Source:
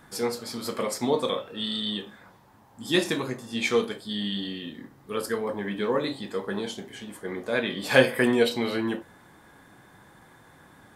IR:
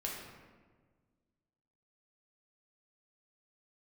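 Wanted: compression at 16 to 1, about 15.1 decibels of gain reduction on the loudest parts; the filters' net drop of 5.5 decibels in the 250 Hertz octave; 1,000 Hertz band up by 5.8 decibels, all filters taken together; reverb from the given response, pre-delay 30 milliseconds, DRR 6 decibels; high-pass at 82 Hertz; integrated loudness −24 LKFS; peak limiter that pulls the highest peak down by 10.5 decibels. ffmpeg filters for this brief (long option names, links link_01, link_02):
-filter_complex "[0:a]highpass=82,equalizer=frequency=250:width_type=o:gain=-7.5,equalizer=frequency=1000:width_type=o:gain=7.5,acompressor=threshold=-26dB:ratio=16,alimiter=level_in=0.5dB:limit=-24dB:level=0:latency=1,volume=-0.5dB,asplit=2[link_01][link_02];[1:a]atrim=start_sample=2205,adelay=30[link_03];[link_02][link_03]afir=irnorm=-1:irlink=0,volume=-7.5dB[link_04];[link_01][link_04]amix=inputs=2:normalize=0,volume=10.5dB"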